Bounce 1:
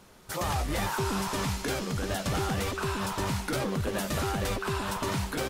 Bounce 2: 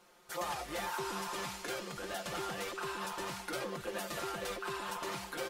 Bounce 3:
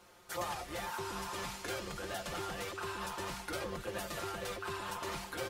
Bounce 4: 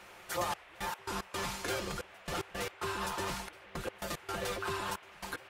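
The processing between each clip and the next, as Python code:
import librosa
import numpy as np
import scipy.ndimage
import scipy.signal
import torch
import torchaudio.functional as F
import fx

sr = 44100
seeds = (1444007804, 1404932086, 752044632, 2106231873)

y1 = fx.bass_treble(x, sr, bass_db=-15, treble_db=-2)
y1 = y1 + 0.68 * np.pad(y1, (int(5.7 * sr / 1000.0), 0))[:len(y1)]
y1 = y1 * librosa.db_to_amplitude(-7.5)
y2 = fx.octave_divider(y1, sr, octaves=2, level_db=-3.0)
y2 = fx.rider(y2, sr, range_db=10, speed_s=0.5)
y2 = y2 * librosa.db_to_amplitude(-1.0)
y3 = fx.step_gate(y2, sr, bpm=112, pattern='xxxx..x.x.x', floor_db=-24.0, edge_ms=4.5)
y3 = fx.dmg_noise_band(y3, sr, seeds[0], low_hz=430.0, high_hz=2800.0, level_db=-60.0)
y3 = y3 * librosa.db_to_amplitude(4.0)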